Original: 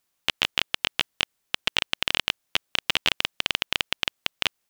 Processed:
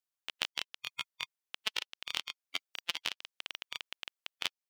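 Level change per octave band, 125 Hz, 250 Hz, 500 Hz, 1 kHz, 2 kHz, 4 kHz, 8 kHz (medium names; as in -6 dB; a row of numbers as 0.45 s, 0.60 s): -20.5 dB, -18.5 dB, -16.5 dB, -13.5 dB, -13.5 dB, -13.0 dB, -10.0 dB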